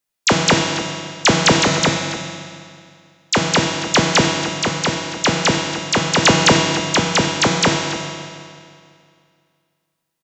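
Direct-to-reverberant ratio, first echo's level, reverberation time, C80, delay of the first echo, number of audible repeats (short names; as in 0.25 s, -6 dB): -0.5 dB, -13.0 dB, 2.3 s, 3.0 dB, 0.281 s, 1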